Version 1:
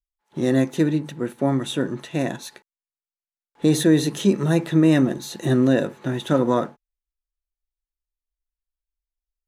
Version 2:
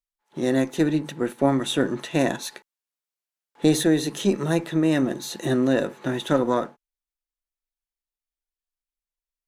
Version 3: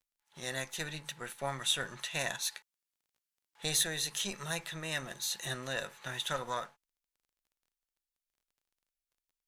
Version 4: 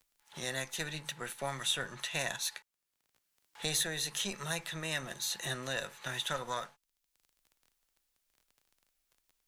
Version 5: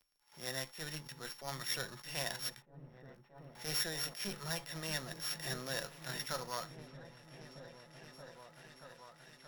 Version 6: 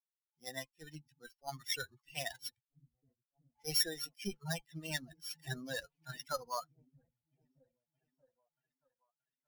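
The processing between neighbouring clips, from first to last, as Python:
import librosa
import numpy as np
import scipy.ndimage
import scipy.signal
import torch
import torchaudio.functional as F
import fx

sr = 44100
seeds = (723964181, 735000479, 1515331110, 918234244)

y1 = fx.peak_eq(x, sr, hz=62.0, db=-12.0, octaves=2.4)
y1 = fx.rider(y1, sr, range_db=4, speed_s=0.5)
y1 = fx.cheby_harmonics(y1, sr, harmonics=(2,), levels_db=(-17,), full_scale_db=-6.5)
y2 = fx.tone_stack(y1, sr, knobs='10-0-10')
y2 = fx.dmg_crackle(y2, sr, seeds[0], per_s=17.0, level_db=-61.0)
y3 = fx.band_squash(y2, sr, depth_pct=40)
y4 = np.r_[np.sort(y3[:len(y3) // 8 * 8].reshape(-1, 8), axis=1).ravel(), y3[len(y3) // 8 * 8:]]
y4 = fx.echo_opening(y4, sr, ms=627, hz=200, octaves=1, feedback_pct=70, wet_db=-6)
y4 = fx.attack_slew(y4, sr, db_per_s=160.0)
y4 = y4 * librosa.db_to_amplitude(-3.0)
y5 = fx.bin_expand(y4, sr, power=3.0)
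y5 = y5 * librosa.db_to_amplitude(7.0)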